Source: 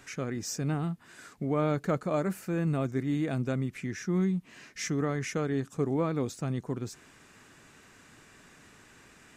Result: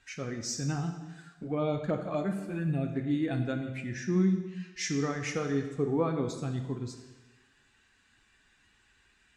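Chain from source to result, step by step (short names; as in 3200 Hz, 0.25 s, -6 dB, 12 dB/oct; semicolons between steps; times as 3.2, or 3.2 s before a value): per-bin expansion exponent 1.5; LPF 5500 Hz 12 dB/oct; high shelf 4100 Hz +7 dB; 1.22–3.11 envelope flanger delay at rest 10.8 ms, full sweep at -26 dBFS; on a send: reverb RT60 1.2 s, pre-delay 5 ms, DRR 4.5 dB; on the sum: gain +1.5 dB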